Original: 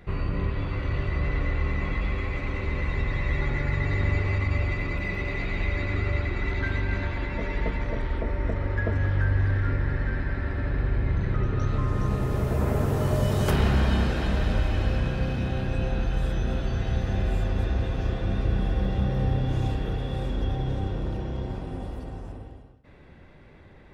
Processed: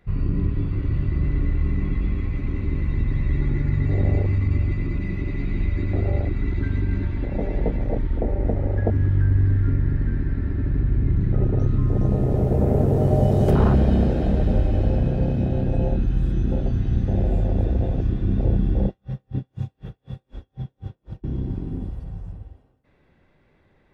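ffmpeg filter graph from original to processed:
ffmpeg -i in.wav -filter_complex "[0:a]asettb=1/sr,asplit=3[link_01][link_02][link_03];[link_01]atrim=end=18.874[link_04];[link_02]atrim=start=18.87:end=21.24,asetpts=PTS-STARTPTS,afade=type=in:duration=0.004:curve=qsin,afade=type=out:start_time=2.366:duration=0.004:curve=qsin,highpass=frequency=130:poles=1,aeval=exprs='val(0)*pow(10,-37*(0.5-0.5*cos(2*PI*4*n/s))/20)':channel_layout=same[link_05];[link_03]atrim=start=21.236[link_06];[link_04][link_05]acrossfade=duration=0.004:curve1=hsin:curve2=qsin[link_07];[link_07][link_06]acrossfade=duration=0.004:curve1=qsin:curve2=hsin,afwtdn=0.0562,equalizer=frequency=60:width_type=o:width=1.5:gain=-4,volume=7.5dB" out.wav

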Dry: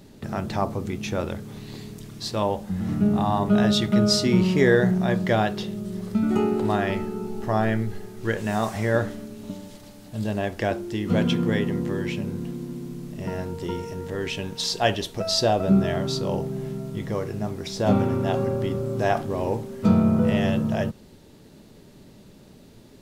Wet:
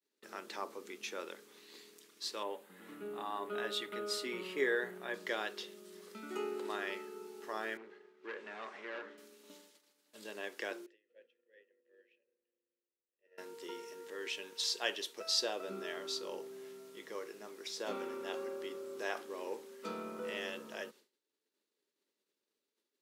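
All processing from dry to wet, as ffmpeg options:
ffmpeg -i in.wav -filter_complex "[0:a]asettb=1/sr,asplit=3[link_01][link_02][link_03];[link_01]atrim=end=2.434[link_04];[link_02]atrim=start=2.43:end=5.14,asetpts=PTS-STARTPTS,afade=type=in:duration=0.004:curve=qsin,afade=type=out:start_time=2.706:duration=0.004:curve=qsin,equalizer=frequency=5600:width_type=o:width=0.83:gain=-12.5,aecho=1:1:7.1:0.31,atrim=end_sample=119511[link_05];[link_03]atrim=start=5.136[link_06];[link_04][link_05]acrossfade=duration=0.004:curve1=hsin:curve2=qsin[link_07];[link_07][link_06]acrossfade=duration=0.004:curve1=qsin:curve2=hsin,asettb=1/sr,asplit=3[link_08][link_09][link_10];[link_08]atrim=end=7.774[link_11];[link_09]atrim=start=7.77:end=9.18,asetpts=PTS-STARTPTS,afade=type=in:duration=0.004:curve=qsin,afade=type=out:start_time=1.406:duration=0.004:curve=qsin,asoftclip=type=hard:threshold=-25dB,highpass=130,lowpass=2400[link_12];[link_10]atrim=start=9.176[link_13];[link_11][link_12]acrossfade=duration=0.004:curve1=hsin:curve2=qsin[link_14];[link_14][link_13]acrossfade=duration=0.004:curve1=qsin:curve2=hsin,asettb=1/sr,asplit=3[link_15][link_16][link_17];[link_15]atrim=end=10.864[link_18];[link_16]atrim=start=10.86:end=13.38,asetpts=PTS-STARTPTS,afade=type=in:duration=0.004:curve=qsin,afade=type=out:start_time=2.516:duration=0.004:curve=qsin,lowshelf=frequency=130:gain=5.5,acompressor=threshold=-25dB:ratio=12:attack=3.2:release=140:knee=1:detection=peak,asplit=3[link_19][link_20][link_21];[link_19]bandpass=frequency=530:width_type=q:width=8,volume=0dB[link_22];[link_20]bandpass=frequency=1840:width_type=q:width=8,volume=-6dB[link_23];[link_21]bandpass=frequency=2480:width_type=q:width=8,volume=-9dB[link_24];[link_22][link_23][link_24]amix=inputs=3:normalize=0[link_25];[link_17]atrim=start=13.376[link_26];[link_18][link_25]acrossfade=duration=0.004:curve1=hsin:curve2=qsin[link_27];[link_27][link_26]acrossfade=duration=0.004:curve1=qsin:curve2=hsin,agate=range=-33dB:threshold=-35dB:ratio=3:detection=peak,highpass=frequency=400:width=0.5412,highpass=frequency=400:width=1.3066,equalizer=frequency=700:width=1.8:gain=-13.5,volume=-8dB" out.wav

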